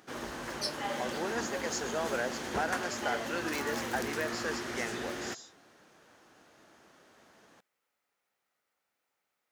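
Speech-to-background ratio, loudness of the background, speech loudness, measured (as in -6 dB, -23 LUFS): 0.0 dB, -37.0 LUFS, -37.0 LUFS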